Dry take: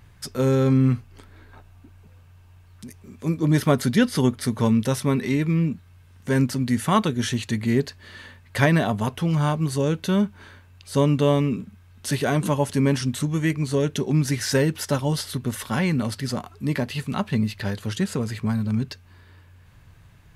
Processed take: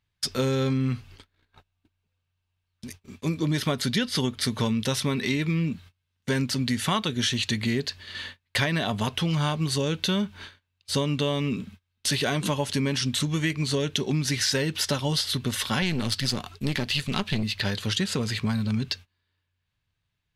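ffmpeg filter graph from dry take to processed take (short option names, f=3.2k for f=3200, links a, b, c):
-filter_complex "[0:a]asettb=1/sr,asplit=3[a][b][c];[a]atrim=end=15.824[d];[b]atrim=start=15.82:end=17.43,asetpts=PTS-STARTPTS,afade=t=in:d=0.004:c=qsin,afade=t=out:st=1.606:d=0.004:c=qsin,equalizer=f=730:t=o:w=2.7:g=-4,acontrast=59,aeval=exprs='(tanh(6.31*val(0)+0.75)-tanh(0.75))/6.31':c=same[e];[c]atrim=start=17.426[f];[d][e]acrossfade=d=0.004:c1=hsin:c2=qsin[g];[g][f]acrossfade=d=0.004:c1=qsin:c2=hsin,agate=range=-29dB:threshold=-43dB:ratio=16:detection=peak,equalizer=f=3.7k:t=o:w=1.7:g=12,acompressor=threshold=-22dB:ratio=6"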